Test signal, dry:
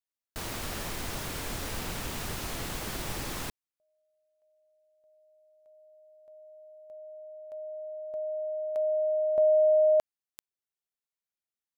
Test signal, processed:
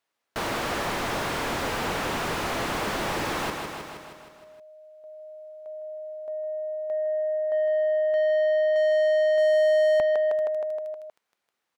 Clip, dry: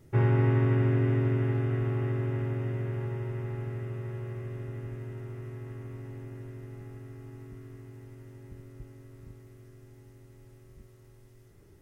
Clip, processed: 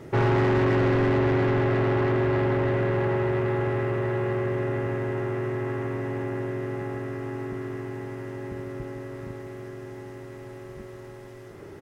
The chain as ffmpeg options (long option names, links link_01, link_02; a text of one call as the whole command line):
ffmpeg -i in.wav -filter_complex "[0:a]aecho=1:1:157|314|471|628|785|942|1099:0.251|0.151|0.0904|0.0543|0.0326|0.0195|0.0117,asplit=2[link_01][link_02];[link_02]highpass=frequency=720:poles=1,volume=31dB,asoftclip=type=tanh:threshold=-14dB[link_03];[link_01][link_03]amix=inputs=2:normalize=0,lowpass=frequency=1000:poles=1,volume=-6dB" out.wav